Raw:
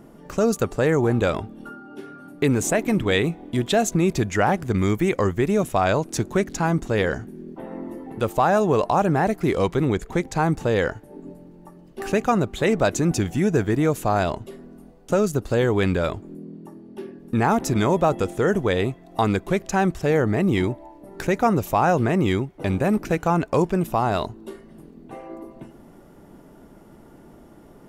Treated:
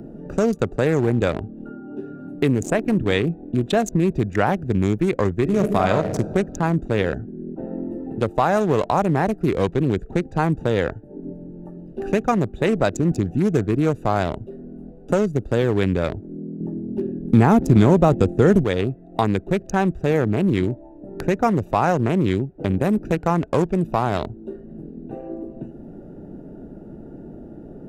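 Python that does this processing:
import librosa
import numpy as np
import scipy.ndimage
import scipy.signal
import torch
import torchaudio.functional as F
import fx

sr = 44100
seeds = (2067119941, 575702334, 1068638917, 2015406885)

y = fx.reverb_throw(x, sr, start_s=5.4, length_s=0.76, rt60_s=1.5, drr_db=3.5)
y = fx.low_shelf(y, sr, hz=420.0, db=11.5, at=(16.6, 18.64))
y = fx.wiener(y, sr, points=41)
y = fx.band_squash(y, sr, depth_pct=40)
y = F.gain(torch.from_numpy(y), 1.5).numpy()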